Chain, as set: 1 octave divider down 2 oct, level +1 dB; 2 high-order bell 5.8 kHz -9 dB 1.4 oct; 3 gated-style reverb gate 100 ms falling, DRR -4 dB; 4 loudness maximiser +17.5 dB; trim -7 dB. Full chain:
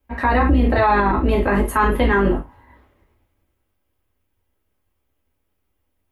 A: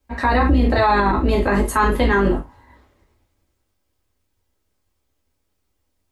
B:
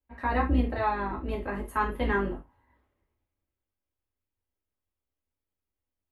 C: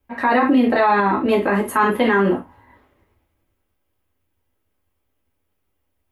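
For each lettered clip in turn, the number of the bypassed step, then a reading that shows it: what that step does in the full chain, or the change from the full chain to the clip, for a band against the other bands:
2, 8 kHz band +4.5 dB; 4, crest factor change +6.5 dB; 1, 125 Hz band -10.0 dB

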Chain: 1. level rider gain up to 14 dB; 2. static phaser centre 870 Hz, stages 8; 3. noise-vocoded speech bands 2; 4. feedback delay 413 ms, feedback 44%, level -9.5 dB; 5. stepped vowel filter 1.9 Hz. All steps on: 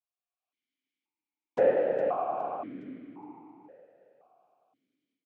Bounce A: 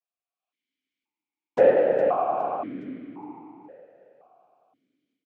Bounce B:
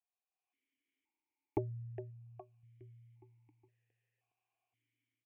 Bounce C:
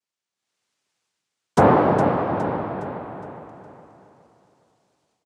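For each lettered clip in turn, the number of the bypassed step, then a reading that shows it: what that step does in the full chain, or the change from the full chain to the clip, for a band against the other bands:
2, loudness change +6.0 LU; 3, 125 Hz band +29.5 dB; 5, 125 Hz band +13.5 dB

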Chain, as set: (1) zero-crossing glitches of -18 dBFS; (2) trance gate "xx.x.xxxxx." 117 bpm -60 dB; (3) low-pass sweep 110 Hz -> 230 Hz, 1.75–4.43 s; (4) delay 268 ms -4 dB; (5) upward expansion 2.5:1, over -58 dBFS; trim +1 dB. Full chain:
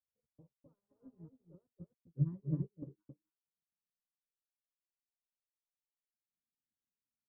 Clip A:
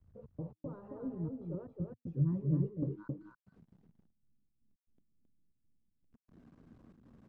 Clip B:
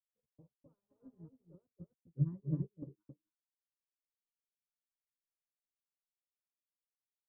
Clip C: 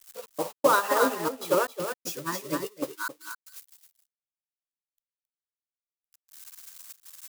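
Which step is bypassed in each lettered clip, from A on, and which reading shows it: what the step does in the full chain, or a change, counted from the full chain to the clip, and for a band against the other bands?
5, crest factor change -5.5 dB; 1, distortion -6 dB; 3, loudness change +12.0 LU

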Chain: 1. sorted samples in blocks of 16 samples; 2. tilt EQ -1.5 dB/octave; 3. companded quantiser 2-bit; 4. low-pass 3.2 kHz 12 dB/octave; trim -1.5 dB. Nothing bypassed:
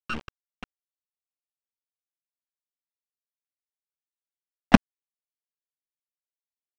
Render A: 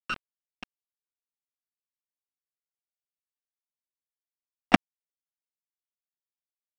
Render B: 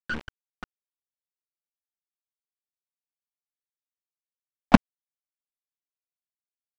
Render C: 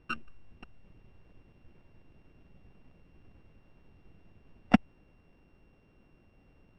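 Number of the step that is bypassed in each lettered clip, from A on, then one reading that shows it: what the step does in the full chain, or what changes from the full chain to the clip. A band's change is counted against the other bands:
2, 125 Hz band -8.5 dB; 1, distortion -4 dB; 3, distortion -5 dB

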